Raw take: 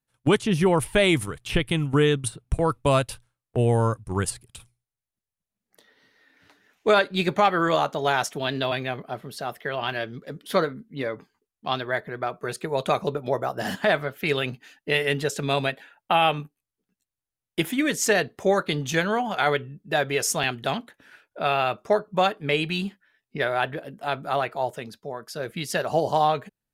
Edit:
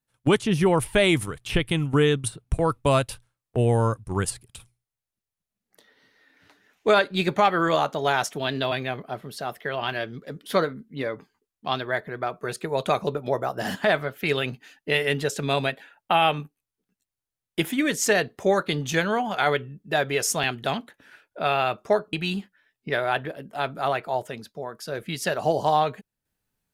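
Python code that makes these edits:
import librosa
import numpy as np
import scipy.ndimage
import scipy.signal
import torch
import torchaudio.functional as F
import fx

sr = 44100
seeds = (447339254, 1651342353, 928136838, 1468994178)

y = fx.edit(x, sr, fx.cut(start_s=22.13, length_s=0.48), tone=tone)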